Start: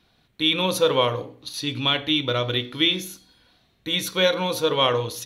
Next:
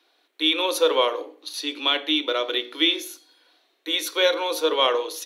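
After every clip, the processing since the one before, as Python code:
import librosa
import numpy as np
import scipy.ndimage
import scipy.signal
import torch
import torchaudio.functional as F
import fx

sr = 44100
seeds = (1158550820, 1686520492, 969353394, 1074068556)

y = scipy.signal.sosfilt(scipy.signal.butter(12, 290.0, 'highpass', fs=sr, output='sos'), x)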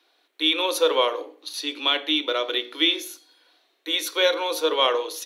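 y = fx.low_shelf(x, sr, hz=180.0, db=-5.5)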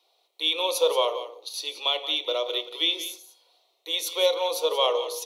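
y = fx.fixed_phaser(x, sr, hz=670.0, stages=4)
y = y + 10.0 ** (-12.5 / 20.0) * np.pad(y, (int(178 * sr / 1000.0), 0))[:len(y)]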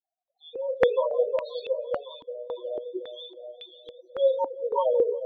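y = fx.spec_topn(x, sr, count=4)
y = fx.echo_feedback(y, sr, ms=362, feedback_pct=47, wet_db=-7.0)
y = fx.filter_held_lowpass(y, sr, hz=3.6, low_hz=290.0, high_hz=2500.0)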